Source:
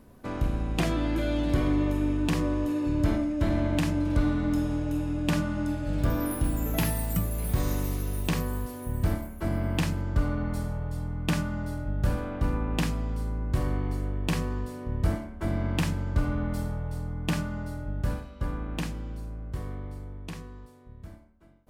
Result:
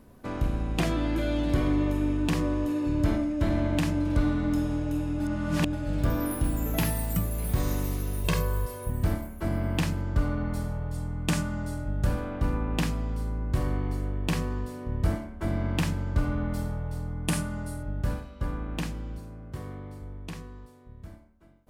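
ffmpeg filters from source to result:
ffmpeg -i in.wav -filter_complex "[0:a]asettb=1/sr,asplit=3[link_01][link_02][link_03];[link_01]atrim=end=8.244[link_04];[link_02]atrim=start=8.24:end=8.9,asetpts=PTS-STARTPTS,afade=type=in:duration=0.004:curve=qsin,afade=type=out:start_time=0.656:duration=0.004:curve=qsin,aecho=1:1:1.9:0.75,atrim=end_sample=29106[link_05];[link_03]atrim=start=8.896[link_06];[link_04][link_05]acrossfade=duration=0.004:curve1=hsin:curve2=qsin[link_07];[link_07][link_06]acrossfade=duration=0.004:curve1=qsin:curve2=hsin,asettb=1/sr,asplit=3[link_08][link_09][link_10];[link_08]atrim=end=10.944[link_11];[link_09]atrim=start=10.94:end=12.05,asetpts=PTS-STARTPTS,afade=type=in:duration=0.004:curve=qsin,afade=type=out:start_time=1.106:duration=0.004:curve=qsin,equalizer=frequency=8100:width_type=o:width=1:gain=7[link_12];[link_10]atrim=start=12.046[link_13];[link_11][link_12]acrossfade=duration=0.004:curve1=hsin:curve2=qsin[link_14];[link_14][link_13]acrossfade=duration=0.004:curve1=qsin:curve2=hsin,asettb=1/sr,asplit=3[link_15][link_16][link_17];[link_15]atrim=end=17.274[link_18];[link_16]atrim=start=17.27:end=17.83,asetpts=PTS-STARTPTS,afade=type=in:duration=0.004:curve=qsin,afade=type=out:start_time=0.556:duration=0.004:curve=qsin,equalizer=frequency=9700:width=1.4:gain=13.5[link_19];[link_17]atrim=start=17.826[link_20];[link_18][link_19]acrossfade=duration=0.004:curve1=hsin:curve2=qsin[link_21];[link_21][link_20]acrossfade=duration=0.004:curve1=qsin:curve2=hsin,asettb=1/sr,asplit=3[link_22][link_23][link_24];[link_22]atrim=end=19.184[link_25];[link_23]atrim=start=19.18:end=20.02,asetpts=PTS-STARTPTS,afade=type=in:duration=0.004:curve=qsin,afade=type=out:start_time=0.836:duration=0.004:curve=qsin,highpass=86[link_26];[link_24]atrim=start=20.016[link_27];[link_25][link_26]acrossfade=duration=0.004:curve1=hsin:curve2=qsin[link_28];[link_28][link_27]acrossfade=duration=0.004:curve1=qsin:curve2=hsin,asplit=3[link_29][link_30][link_31];[link_29]atrim=end=5.202[link_32];[link_30]atrim=start=5.198:end=5.732,asetpts=PTS-STARTPTS,areverse[link_33];[link_31]atrim=start=5.728[link_34];[link_32][link_33]acrossfade=duration=0.004:curve1=hsin:curve2=hsin[link_35];[link_35][link_34]acrossfade=duration=0.004:curve1=hsin:curve2=hsin" out.wav

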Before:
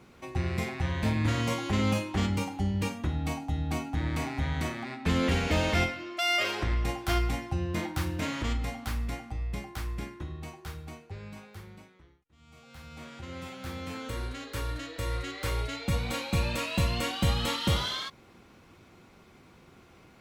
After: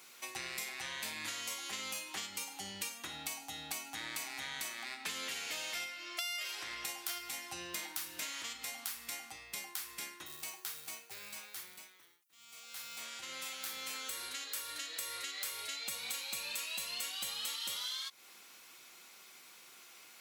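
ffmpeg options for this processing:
ffmpeg -i in.wav -filter_complex "[0:a]asettb=1/sr,asplit=3[link_01][link_02][link_03];[link_01]atrim=end=10.264[link_04];[link_02]atrim=start=10.26:end=13.01,asetpts=PTS-STARTPTS,afade=type=in:duration=0.004:curve=qsin,afade=type=out:start_time=2.746:duration=0.004:curve=qsin,acrusher=bits=6:mode=log:mix=0:aa=0.000001[link_05];[link_03]atrim=start=13.006[link_06];[link_04][link_05]acrossfade=duration=0.004:curve1=hsin:curve2=qsin[link_07];[link_07][link_06]acrossfade=duration=0.004:curve1=qsin:curve2=hsin,highpass=frequency=170:poles=1,aderivative,acompressor=threshold=-51dB:ratio=6,volume=13dB" out.wav

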